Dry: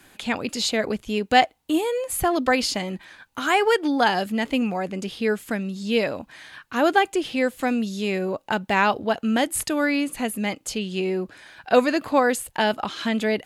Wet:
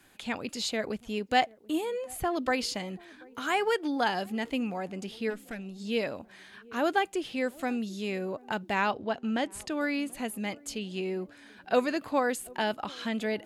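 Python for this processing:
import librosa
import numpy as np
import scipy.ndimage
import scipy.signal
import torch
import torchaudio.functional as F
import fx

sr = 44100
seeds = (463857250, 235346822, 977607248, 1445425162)

y = fx.high_shelf(x, sr, hz=5900.0, db=-6.5, at=(1.85, 2.37))
y = fx.tube_stage(y, sr, drive_db=22.0, bias=0.7, at=(5.29, 5.78), fade=0.02)
y = fx.air_absorb(y, sr, metres=59.0, at=(8.91, 9.81))
y = fx.echo_banded(y, sr, ms=735, feedback_pct=62, hz=330.0, wet_db=-22.5)
y = y * librosa.db_to_amplitude(-8.0)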